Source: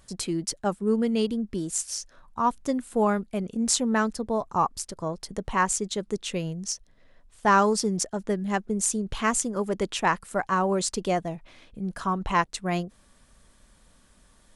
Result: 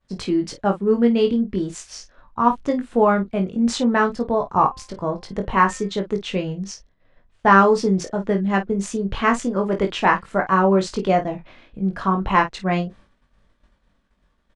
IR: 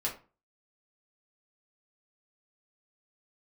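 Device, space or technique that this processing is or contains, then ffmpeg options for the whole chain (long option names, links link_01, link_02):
hearing-loss simulation: -filter_complex "[0:a]lowpass=3200,agate=range=-33dB:threshold=-48dB:ratio=3:detection=peak,asettb=1/sr,asplit=3[link_01][link_02][link_03];[link_01]atrim=end=4.514[link_04];[link_02]atrim=start=4.51:end=5.9,asetpts=PTS-STARTPTS,afade=type=in:duration=0.004:curve=qsin,afade=type=out:start_time=1.386:duration=0.004:curve=qsin,bandreject=frequency=260.8:width_type=h:width=4,bandreject=frequency=521.6:width_type=h:width=4,bandreject=frequency=782.4:width_type=h:width=4,bandreject=frequency=1043.2:width_type=h:width=4,bandreject=frequency=1304:width_type=h:width=4,bandreject=frequency=1564.8:width_type=h:width=4,bandreject=frequency=1825.6:width_type=h:width=4,bandreject=frequency=2086.4:width_type=h:width=4,bandreject=frequency=2347.2:width_type=h:width=4,bandreject=frequency=2608:width_type=h:width=4,bandreject=frequency=2868.8:width_type=h:width=4,bandreject=frequency=3129.6:width_type=h:width=4,bandreject=frequency=3390.4:width_type=h:width=4[link_05];[link_03]atrim=start=5.896[link_06];[link_04][link_05]acrossfade=duration=0.004:curve1=hsin:curve2=qsin[link_07];[link_07][link_06]acrossfade=duration=0.004:curve1=qsin:curve2=hsin,aecho=1:1:21|51:0.596|0.251,volume=5.5dB"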